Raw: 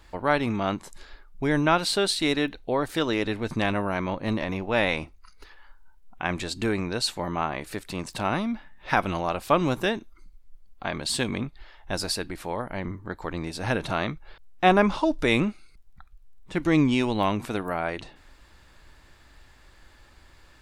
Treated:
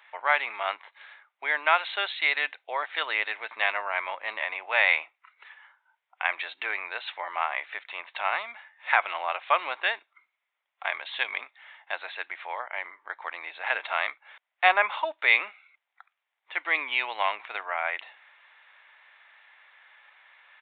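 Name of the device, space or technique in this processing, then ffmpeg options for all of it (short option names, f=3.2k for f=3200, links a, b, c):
musical greeting card: -filter_complex "[0:a]aresample=8000,aresample=44100,highpass=f=710:w=0.5412,highpass=f=710:w=1.3066,equalizer=f=2.1k:t=o:w=0.56:g=8.5,asplit=3[a][b][c];[a]afade=t=out:st=16.59:d=0.02[d];[b]agate=range=-33dB:threshold=-35dB:ratio=3:detection=peak,afade=t=in:st=16.59:d=0.02,afade=t=out:st=17.65:d=0.02[e];[c]afade=t=in:st=17.65:d=0.02[f];[d][e][f]amix=inputs=3:normalize=0"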